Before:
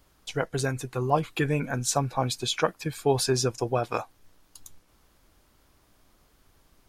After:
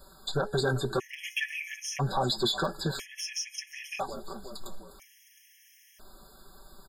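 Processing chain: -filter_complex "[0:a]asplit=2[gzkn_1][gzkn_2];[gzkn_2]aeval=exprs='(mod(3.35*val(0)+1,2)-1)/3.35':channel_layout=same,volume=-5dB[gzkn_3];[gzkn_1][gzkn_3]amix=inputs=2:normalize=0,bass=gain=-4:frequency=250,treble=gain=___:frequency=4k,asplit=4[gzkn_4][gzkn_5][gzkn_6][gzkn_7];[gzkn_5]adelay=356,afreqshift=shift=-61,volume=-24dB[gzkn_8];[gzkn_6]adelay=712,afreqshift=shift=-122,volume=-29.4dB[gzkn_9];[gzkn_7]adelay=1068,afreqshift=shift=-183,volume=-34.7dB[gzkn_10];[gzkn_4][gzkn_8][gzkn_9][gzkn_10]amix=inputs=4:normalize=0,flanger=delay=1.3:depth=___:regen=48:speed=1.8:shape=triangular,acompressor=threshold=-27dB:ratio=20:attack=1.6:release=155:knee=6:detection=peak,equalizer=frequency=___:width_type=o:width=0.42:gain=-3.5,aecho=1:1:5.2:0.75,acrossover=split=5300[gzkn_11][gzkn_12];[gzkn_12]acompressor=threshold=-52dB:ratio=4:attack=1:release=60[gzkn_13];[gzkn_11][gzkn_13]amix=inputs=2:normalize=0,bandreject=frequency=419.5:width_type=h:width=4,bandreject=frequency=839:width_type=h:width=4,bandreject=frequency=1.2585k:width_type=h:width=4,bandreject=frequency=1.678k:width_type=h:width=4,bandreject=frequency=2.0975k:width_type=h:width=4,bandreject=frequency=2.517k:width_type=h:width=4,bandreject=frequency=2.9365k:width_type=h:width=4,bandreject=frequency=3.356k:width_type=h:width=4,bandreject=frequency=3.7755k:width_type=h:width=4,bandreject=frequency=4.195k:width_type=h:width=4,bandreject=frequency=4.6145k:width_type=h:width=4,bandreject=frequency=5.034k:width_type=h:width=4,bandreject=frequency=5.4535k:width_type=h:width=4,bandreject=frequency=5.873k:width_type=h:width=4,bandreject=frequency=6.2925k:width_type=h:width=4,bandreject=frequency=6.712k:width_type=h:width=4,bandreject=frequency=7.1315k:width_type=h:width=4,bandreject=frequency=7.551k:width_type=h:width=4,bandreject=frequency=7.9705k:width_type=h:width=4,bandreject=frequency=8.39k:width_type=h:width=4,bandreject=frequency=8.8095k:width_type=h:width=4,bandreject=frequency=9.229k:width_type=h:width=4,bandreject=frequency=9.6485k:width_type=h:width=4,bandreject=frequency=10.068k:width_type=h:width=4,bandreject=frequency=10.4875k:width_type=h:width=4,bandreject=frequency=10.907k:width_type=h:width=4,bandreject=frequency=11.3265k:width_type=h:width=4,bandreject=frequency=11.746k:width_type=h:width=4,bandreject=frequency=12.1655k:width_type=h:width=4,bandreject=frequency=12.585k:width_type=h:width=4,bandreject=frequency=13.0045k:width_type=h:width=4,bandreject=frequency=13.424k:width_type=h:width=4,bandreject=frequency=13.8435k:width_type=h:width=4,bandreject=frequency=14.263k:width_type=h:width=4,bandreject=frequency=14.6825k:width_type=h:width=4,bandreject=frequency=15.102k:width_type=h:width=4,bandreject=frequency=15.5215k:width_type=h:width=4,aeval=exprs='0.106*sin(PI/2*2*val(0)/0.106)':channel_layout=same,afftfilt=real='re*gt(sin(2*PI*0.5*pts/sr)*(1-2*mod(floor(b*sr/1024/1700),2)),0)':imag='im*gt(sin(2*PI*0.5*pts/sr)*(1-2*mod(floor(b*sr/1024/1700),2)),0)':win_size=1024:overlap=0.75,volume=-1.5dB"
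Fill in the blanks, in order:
4, 8.6, 9.3k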